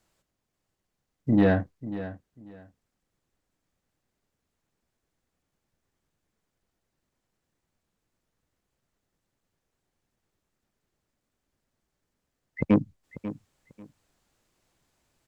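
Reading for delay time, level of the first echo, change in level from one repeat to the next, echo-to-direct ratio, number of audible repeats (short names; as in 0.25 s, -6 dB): 0.542 s, -14.0 dB, -13.5 dB, -14.0 dB, 2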